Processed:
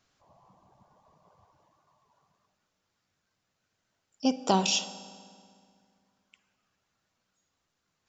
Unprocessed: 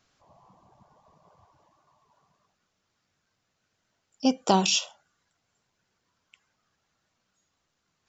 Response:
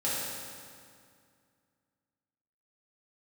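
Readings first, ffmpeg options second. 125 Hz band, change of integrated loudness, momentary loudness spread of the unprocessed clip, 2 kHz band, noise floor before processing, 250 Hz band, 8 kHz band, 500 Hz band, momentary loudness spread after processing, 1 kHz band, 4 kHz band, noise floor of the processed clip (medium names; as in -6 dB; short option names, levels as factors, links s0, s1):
-3.0 dB, -3.5 dB, 8 LU, -3.0 dB, -78 dBFS, -3.0 dB, no reading, -2.5 dB, 16 LU, -3.0 dB, -3.0 dB, -81 dBFS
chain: -filter_complex "[0:a]asplit=2[s0][s1];[1:a]atrim=start_sample=2205,adelay=52[s2];[s1][s2]afir=irnorm=-1:irlink=0,volume=0.075[s3];[s0][s3]amix=inputs=2:normalize=0,volume=0.708"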